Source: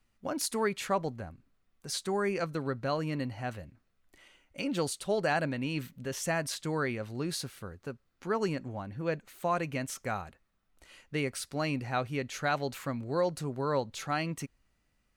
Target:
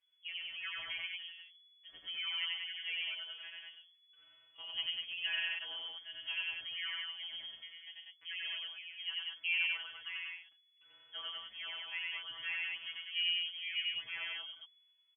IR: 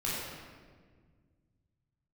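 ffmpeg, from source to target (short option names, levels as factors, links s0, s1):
-filter_complex "[0:a]equalizer=f=100:t=o:w=0.67:g=-9,equalizer=f=250:t=o:w=0.67:g=-11,equalizer=f=2500:t=o:w=0.67:g=-11,afftfilt=real='hypot(re,im)*cos(PI*b)':imag='0':win_size=1024:overlap=0.75,flanger=delay=3.6:depth=3.4:regen=-63:speed=0.57:shape=sinusoidal,asplit=2[s0][s1];[s1]aecho=0:1:90.38|137|192.4:0.891|0.282|0.708[s2];[s0][s2]amix=inputs=2:normalize=0,lowpass=f=2900:t=q:w=0.5098,lowpass=f=2900:t=q:w=0.6013,lowpass=f=2900:t=q:w=0.9,lowpass=f=2900:t=q:w=2.563,afreqshift=-3400"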